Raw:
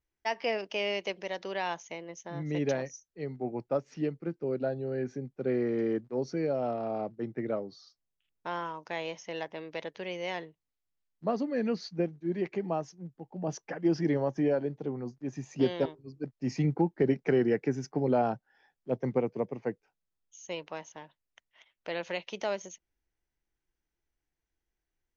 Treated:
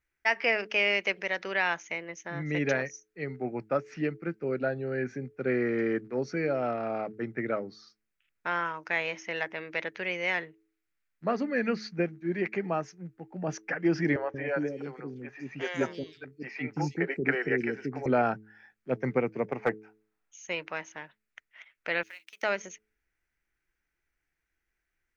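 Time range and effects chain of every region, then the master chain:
14.16–18.06 low shelf 260 Hz -7.5 dB + three bands offset in time mids, lows, highs 0.18/0.32 s, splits 420/3900 Hz
19.48–20.46 bell 810 Hz +11.5 dB 1.3 oct + overloaded stage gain 20.5 dB
22.03–22.43 G.711 law mismatch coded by A + differentiator + compressor 4:1, threshold -50 dBFS
whole clip: band shelf 1800 Hz +10.5 dB 1.2 oct; de-hum 107.6 Hz, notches 4; gain +1 dB

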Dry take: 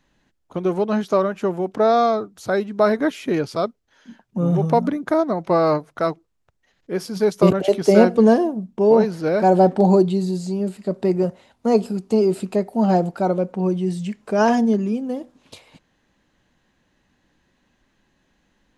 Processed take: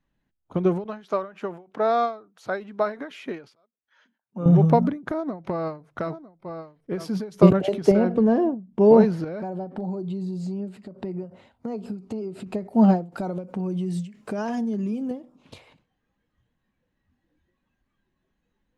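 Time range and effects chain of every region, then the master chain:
0.84–4.46 HPF 830 Hz 6 dB/oct + high shelf 4700 Hz -7.5 dB
5.07–7.17 echo 0.952 s -18 dB + compressor 8:1, threshold -23 dBFS
7.91–8.62 LPF 2800 Hz 6 dB/oct + compressor 8:1, threshold -16 dBFS
9.24–12.47 high shelf 7600 Hz -4 dB + compressor, threshold -30 dBFS
13.12–15.11 compressor 5:1, threshold -27 dBFS + high shelf 4700 Hz +11 dB
whole clip: spectral noise reduction 13 dB; tone controls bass +6 dB, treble -8 dB; ending taper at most 160 dB/s; gain -1 dB

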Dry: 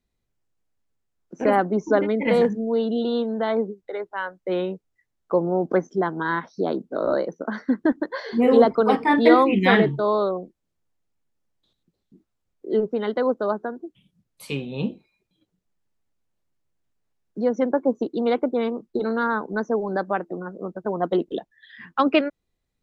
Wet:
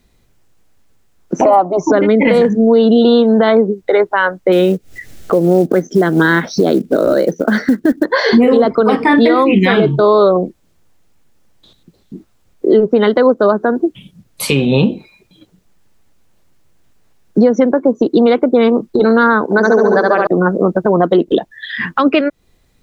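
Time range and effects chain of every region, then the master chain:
1.41–1.92 band shelf 870 Hz +12 dB + fixed phaser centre 320 Hz, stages 8
4.52–8.05 bell 1000 Hz -12.5 dB 0.62 oct + upward compressor, threshold -37 dBFS + short-mantissa float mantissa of 4-bit
9.73–10.36 Butterworth band-stop 1900 Hz, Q 3.7 + doubler 12 ms -12 dB
19.44–20.27 HPF 410 Hz 6 dB/oct + flutter echo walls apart 11.9 m, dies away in 1.2 s
whole clip: dynamic EQ 840 Hz, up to -5 dB, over -36 dBFS, Q 3.8; compressor 6:1, threshold -29 dBFS; maximiser +23.5 dB; gain -1 dB

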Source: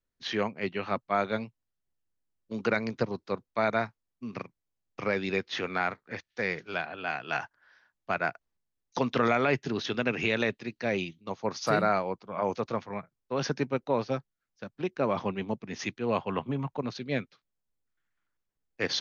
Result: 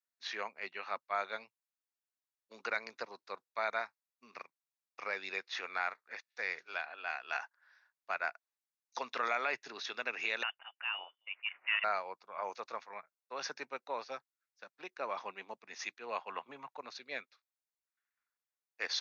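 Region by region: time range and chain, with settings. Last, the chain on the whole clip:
10.43–11.84 HPF 400 Hz + air absorption 170 m + inverted band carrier 3300 Hz
whole clip: HPF 850 Hz 12 dB/oct; notch 3100 Hz, Q 7.2; gain -4.5 dB

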